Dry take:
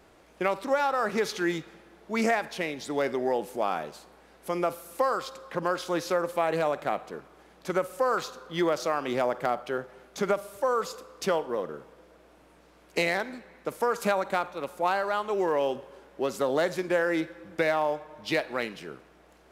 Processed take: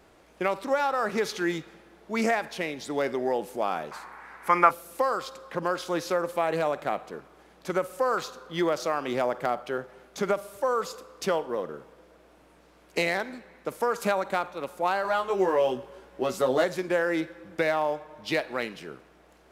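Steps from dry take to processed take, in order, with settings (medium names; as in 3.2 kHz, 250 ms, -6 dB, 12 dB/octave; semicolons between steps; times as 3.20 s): 3.91–4.71 s: high-order bell 1.4 kHz +15.5 dB; 15.03–16.64 s: doubling 16 ms -2.5 dB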